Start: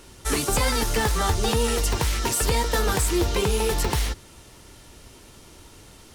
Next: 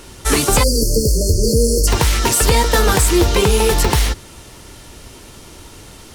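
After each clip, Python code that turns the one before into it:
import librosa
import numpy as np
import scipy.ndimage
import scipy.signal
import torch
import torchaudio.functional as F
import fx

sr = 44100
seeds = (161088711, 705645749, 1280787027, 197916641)

y = fx.spec_erase(x, sr, start_s=0.63, length_s=1.24, low_hz=630.0, high_hz=4200.0)
y = y * 10.0 ** (9.0 / 20.0)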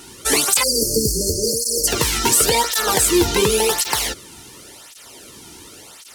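y = fx.high_shelf(x, sr, hz=2700.0, db=6.5)
y = fx.flanger_cancel(y, sr, hz=0.91, depth_ms=1.9)
y = y * 10.0 ** (-1.0 / 20.0)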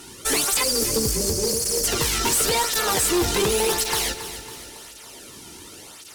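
y = fx.tube_stage(x, sr, drive_db=17.0, bias=0.4)
y = fx.echo_feedback(y, sr, ms=276, feedback_pct=51, wet_db=-12)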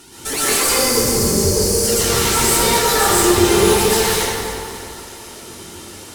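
y = fx.rev_plate(x, sr, seeds[0], rt60_s=2.1, hf_ratio=0.45, predelay_ms=105, drr_db=-9.0)
y = y * 10.0 ** (-2.0 / 20.0)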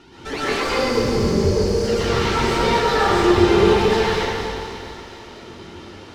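y = fx.air_absorb(x, sr, metres=240.0)
y = fx.echo_wet_highpass(y, sr, ms=239, feedback_pct=61, hz=3200.0, wet_db=-7)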